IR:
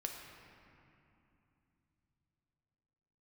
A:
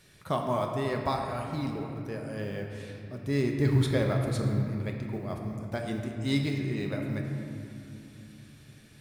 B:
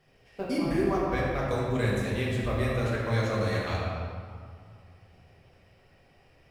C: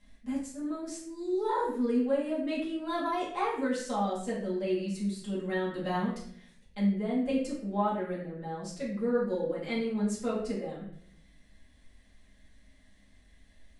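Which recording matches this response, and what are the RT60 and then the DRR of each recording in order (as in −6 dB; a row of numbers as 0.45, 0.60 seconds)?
A; 2.9, 2.1, 0.65 seconds; 1.5, −7.0, −7.0 decibels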